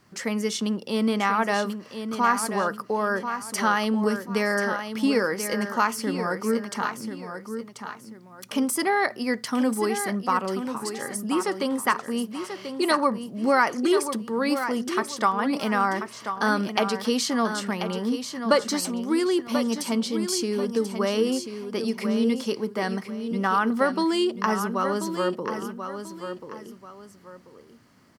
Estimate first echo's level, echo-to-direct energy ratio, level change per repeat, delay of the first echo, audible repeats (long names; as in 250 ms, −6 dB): −8.5 dB, −8.0 dB, −10.0 dB, 1,037 ms, 2